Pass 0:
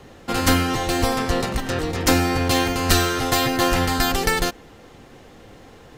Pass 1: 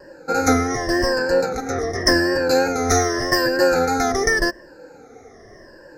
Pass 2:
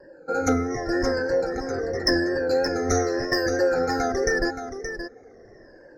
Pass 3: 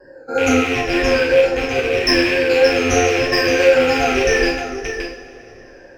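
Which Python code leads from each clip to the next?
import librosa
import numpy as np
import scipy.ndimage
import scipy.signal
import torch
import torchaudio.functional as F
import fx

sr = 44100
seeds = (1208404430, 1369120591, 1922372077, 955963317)

y1 = fx.spec_ripple(x, sr, per_octave=1.3, drift_hz=-0.86, depth_db=19)
y1 = fx.curve_eq(y1, sr, hz=(200.0, 300.0, 520.0, 1100.0, 1700.0, 3200.0, 5200.0, 8100.0), db=(0, 7, 12, 1, 12, -18, 12, -3))
y1 = fx.vibrato(y1, sr, rate_hz=3.1, depth_cents=40.0)
y1 = y1 * 10.0 ** (-9.0 / 20.0)
y2 = fx.envelope_sharpen(y1, sr, power=1.5)
y2 = np.clip(y2, -10.0 ** (-6.0 / 20.0), 10.0 ** (-6.0 / 20.0))
y2 = y2 + 10.0 ** (-9.0 / 20.0) * np.pad(y2, (int(573 * sr / 1000.0), 0))[:len(y2)]
y2 = y2 * 10.0 ** (-5.0 / 20.0)
y3 = fx.rattle_buzz(y2, sr, strikes_db=-34.0, level_db=-16.0)
y3 = fx.rev_double_slope(y3, sr, seeds[0], early_s=0.49, late_s=3.3, knee_db=-21, drr_db=-6.5)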